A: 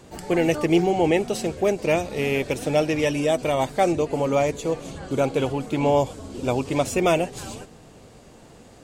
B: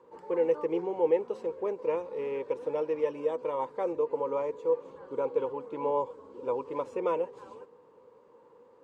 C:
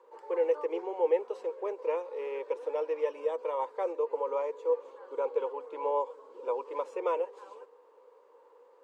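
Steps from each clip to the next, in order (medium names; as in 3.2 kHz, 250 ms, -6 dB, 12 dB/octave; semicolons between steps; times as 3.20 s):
two resonant band-passes 690 Hz, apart 0.97 oct
high-pass 420 Hz 24 dB/octave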